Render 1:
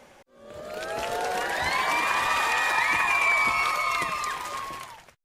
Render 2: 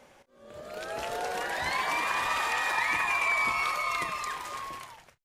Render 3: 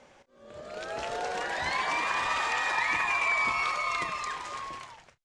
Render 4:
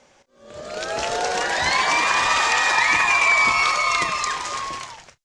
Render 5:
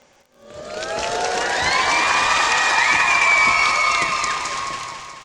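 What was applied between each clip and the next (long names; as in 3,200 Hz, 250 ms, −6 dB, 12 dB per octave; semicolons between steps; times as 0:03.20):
double-tracking delay 32 ms −13.5 dB; level −4.5 dB
low-pass filter 8,000 Hz 24 dB per octave
automatic gain control gain up to 9 dB; parametric band 6,100 Hz +7.5 dB 1.3 octaves
surface crackle 30 per second −42 dBFS; on a send: repeating echo 215 ms, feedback 60%, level −8.5 dB; on the sum: level +1 dB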